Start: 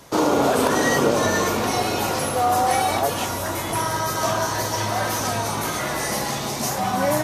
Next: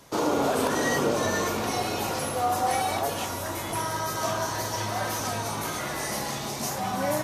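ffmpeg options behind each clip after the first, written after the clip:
-af "bandreject=f=62.01:t=h:w=4,bandreject=f=124.02:t=h:w=4,bandreject=f=186.03:t=h:w=4,bandreject=f=248.04:t=h:w=4,bandreject=f=310.05:t=h:w=4,bandreject=f=372.06:t=h:w=4,bandreject=f=434.07:t=h:w=4,bandreject=f=496.08:t=h:w=4,bandreject=f=558.09:t=h:w=4,bandreject=f=620.1:t=h:w=4,bandreject=f=682.11:t=h:w=4,bandreject=f=744.12:t=h:w=4,bandreject=f=806.13:t=h:w=4,bandreject=f=868.14:t=h:w=4,bandreject=f=930.15:t=h:w=4,bandreject=f=992.16:t=h:w=4,bandreject=f=1054.17:t=h:w=4,bandreject=f=1116.18:t=h:w=4,bandreject=f=1178.19:t=h:w=4,bandreject=f=1240.2:t=h:w=4,bandreject=f=1302.21:t=h:w=4,bandreject=f=1364.22:t=h:w=4,bandreject=f=1426.23:t=h:w=4,bandreject=f=1488.24:t=h:w=4,bandreject=f=1550.25:t=h:w=4,bandreject=f=1612.26:t=h:w=4,bandreject=f=1674.27:t=h:w=4,bandreject=f=1736.28:t=h:w=4,bandreject=f=1798.29:t=h:w=4,bandreject=f=1860.3:t=h:w=4,bandreject=f=1922.31:t=h:w=4,bandreject=f=1984.32:t=h:w=4,bandreject=f=2046.33:t=h:w=4,bandreject=f=2108.34:t=h:w=4,volume=0.531"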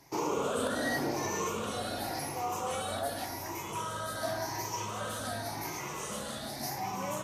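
-af "afftfilt=real='re*pow(10,11/40*sin(2*PI*(0.75*log(max(b,1)*sr/1024/100)/log(2)-(0.89)*(pts-256)/sr)))':imag='im*pow(10,11/40*sin(2*PI*(0.75*log(max(b,1)*sr/1024/100)/log(2)-(0.89)*(pts-256)/sr)))':win_size=1024:overlap=0.75,volume=0.376"

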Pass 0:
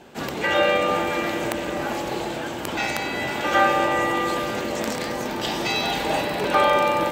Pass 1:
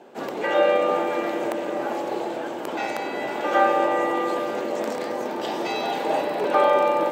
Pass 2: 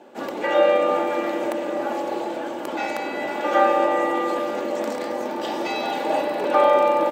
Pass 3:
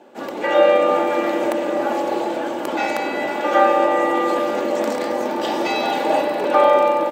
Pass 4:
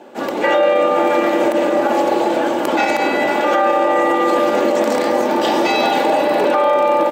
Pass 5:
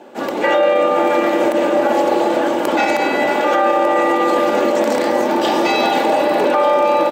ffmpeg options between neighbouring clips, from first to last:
-af "highpass=480,tiltshelf=f=910:g=9.5"
-af "aecho=1:1:3.5:0.35"
-af "dynaudnorm=f=160:g=5:m=1.78"
-af "alimiter=level_in=4.22:limit=0.891:release=50:level=0:latency=1,volume=0.531"
-af "aecho=1:1:1198:0.211"

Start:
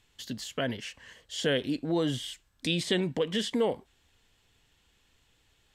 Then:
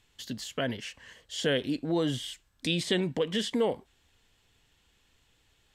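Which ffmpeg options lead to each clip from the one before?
-af anull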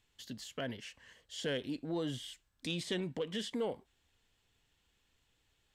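-af "asoftclip=type=tanh:threshold=0.15,volume=0.398"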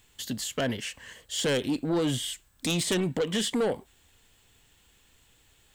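-af "aeval=exprs='0.0531*sin(PI/2*1.78*val(0)/0.0531)':c=same,aexciter=amount=1.5:drive=8:freq=7300,volume=1.5"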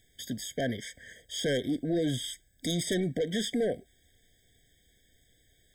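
-af "afftfilt=real='re*eq(mod(floor(b*sr/1024/770),2),0)':imag='im*eq(mod(floor(b*sr/1024/770),2),0)':win_size=1024:overlap=0.75,volume=0.794"

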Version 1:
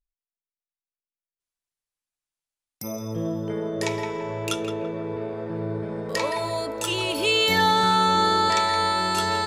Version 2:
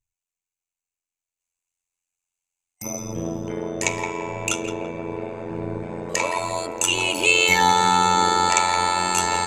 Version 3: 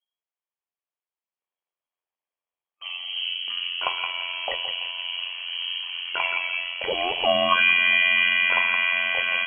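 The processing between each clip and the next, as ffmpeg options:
-af "superequalizer=9b=1.58:12b=2.51:15b=3.98:16b=1.41,tremolo=f=88:d=0.788,volume=1.41"
-af "aeval=exprs='if(lt(val(0),0),0.708*val(0),val(0))':c=same,lowpass=f=2800:t=q:w=0.5098,lowpass=f=2800:t=q:w=0.6013,lowpass=f=2800:t=q:w=0.9,lowpass=f=2800:t=q:w=2.563,afreqshift=-3300"

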